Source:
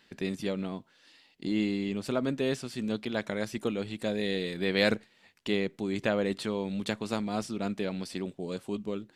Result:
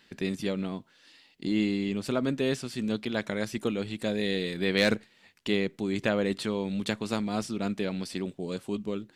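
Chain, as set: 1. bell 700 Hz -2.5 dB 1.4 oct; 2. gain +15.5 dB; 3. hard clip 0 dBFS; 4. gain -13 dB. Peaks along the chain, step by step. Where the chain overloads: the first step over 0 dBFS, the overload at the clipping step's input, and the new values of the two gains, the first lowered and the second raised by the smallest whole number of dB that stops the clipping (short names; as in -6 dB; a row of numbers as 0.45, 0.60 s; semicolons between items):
-11.0, +4.5, 0.0, -13.0 dBFS; step 2, 4.5 dB; step 2 +10.5 dB, step 4 -8 dB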